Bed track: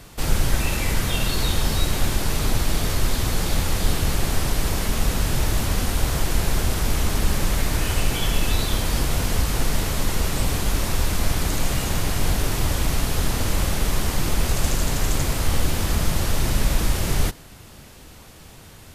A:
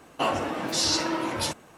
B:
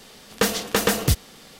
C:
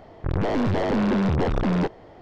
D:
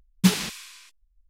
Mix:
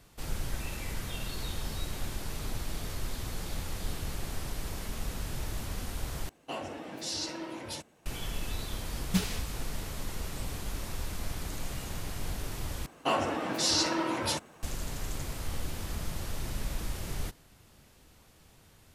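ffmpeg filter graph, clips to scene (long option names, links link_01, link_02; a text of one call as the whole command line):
ffmpeg -i bed.wav -i cue0.wav -i cue1.wav -i cue2.wav -i cue3.wav -filter_complex "[1:a]asplit=2[link_01][link_02];[0:a]volume=-14.5dB[link_03];[link_01]equalizer=frequency=1200:width_type=o:width=0.8:gain=-6.5[link_04];[link_03]asplit=3[link_05][link_06][link_07];[link_05]atrim=end=6.294[link_08];[link_04]atrim=end=1.77,asetpts=PTS-STARTPTS,volume=-10.5dB[link_09];[link_06]atrim=start=8.056:end=12.864[link_10];[link_02]atrim=end=1.77,asetpts=PTS-STARTPTS,volume=-2.5dB[link_11];[link_07]atrim=start=14.626[link_12];[4:a]atrim=end=1.29,asetpts=PTS-STARTPTS,volume=-10dB,afade=type=in:duration=0.004:curve=hsin,afade=type=out:start_time=1.286:duration=0.004:curve=hsin,adelay=392490S[link_13];[link_08][link_09]acrossfade=duration=0.004:curve1=hsin:curve2=hsin[link_14];[link_14][link_10]acrossfade=duration=0.004:curve1=hsin:curve2=hsin[link_15];[link_15][link_11]acrossfade=duration=0.004:curve1=hsin:curve2=hsin[link_16];[link_16][link_12]acrossfade=duration=0.004:curve1=hsin:curve2=hsin[link_17];[link_17][link_13]amix=inputs=2:normalize=0" out.wav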